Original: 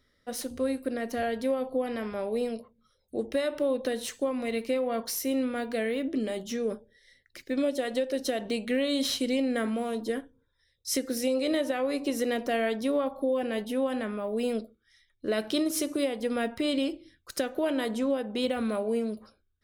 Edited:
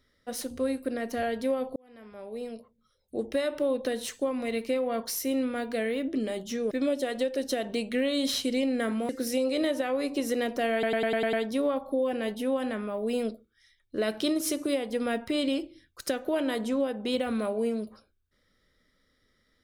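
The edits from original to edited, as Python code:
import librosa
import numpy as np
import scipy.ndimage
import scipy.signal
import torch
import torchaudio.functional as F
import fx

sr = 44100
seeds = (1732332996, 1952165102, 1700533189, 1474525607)

y = fx.edit(x, sr, fx.fade_in_span(start_s=1.76, length_s=1.49),
    fx.cut(start_s=6.71, length_s=0.76),
    fx.cut(start_s=9.85, length_s=1.14),
    fx.stutter(start_s=12.63, slice_s=0.1, count=7), tone=tone)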